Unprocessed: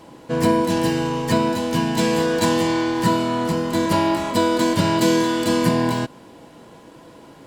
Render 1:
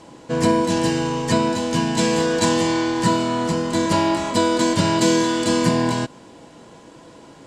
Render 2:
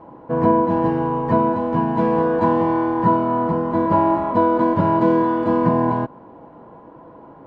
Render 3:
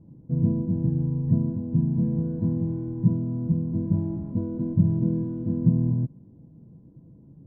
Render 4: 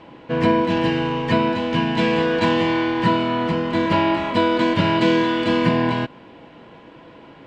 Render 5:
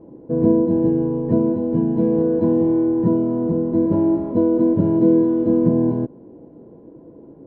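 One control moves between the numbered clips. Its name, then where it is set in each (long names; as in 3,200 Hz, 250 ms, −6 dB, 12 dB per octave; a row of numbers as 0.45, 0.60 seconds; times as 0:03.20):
low-pass with resonance, frequency: 7,600, 1,000, 150, 2,700, 400 Hertz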